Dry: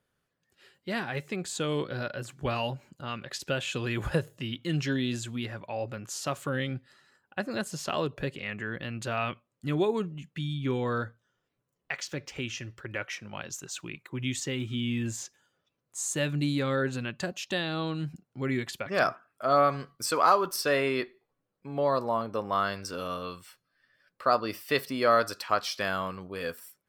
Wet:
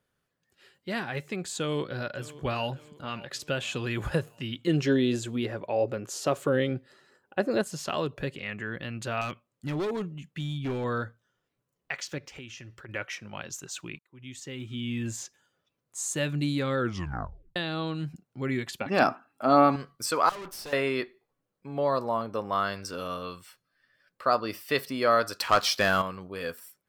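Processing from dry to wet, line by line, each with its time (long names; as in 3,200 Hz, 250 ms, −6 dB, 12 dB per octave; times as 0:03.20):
0:01.57–0:02.69: delay throw 580 ms, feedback 45%, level −18 dB
0:04.67–0:07.62: parametric band 430 Hz +11 dB 1.3 octaves
0:09.21–0:10.84: hard clipping −27 dBFS
0:12.18–0:12.89: downward compressor 2.5 to 1, threshold −43 dBFS
0:13.99–0:15.14: fade in
0:16.77: tape stop 0.79 s
0:18.81–0:19.76: hollow resonant body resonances 260/810/2,700/4,000 Hz, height 13 dB, ringing for 30 ms
0:20.29–0:20.73: tube saturation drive 38 dB, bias 0.7
0:25.37–0:26.02: leveller curve on the samples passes 2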